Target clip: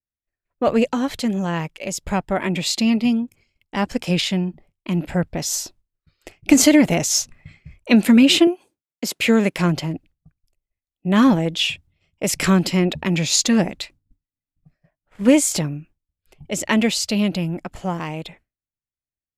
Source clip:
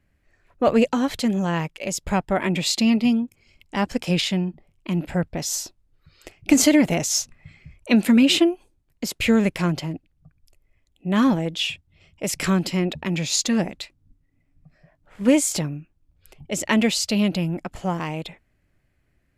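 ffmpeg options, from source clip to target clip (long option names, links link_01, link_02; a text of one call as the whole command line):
ffmpeg -i in.wav -filter_complex "[0:a]asettb=1/sr,asplit=3[link_01][link_02][link_03];[link_01]atrim=end=8.474[link_04];[link_02]atrim=start=8.47:end=9.58,asetpts=PTS-STARTPTS,afade=type=in:duration=0.004:curve=qsin,afade=type=out:start_time=1.106:duration=0.004:curve=qsin,highpass=200[link_05];[link_03]atrim=start=9.576[link_06];[link_04][link_05]acrossfade=duration=0.004:curve1=hsin:curve2=qsin[link_07];[link_07][link_06]acrossfade=duration=0.004:curve1=qsin:curve2=hsin,agate=range=-33dB:threshold=-44dB:ratio=3:detection=peak,dynaudnorm=framelen=420:gausssize=21:maxgain=11.5dB" out.wav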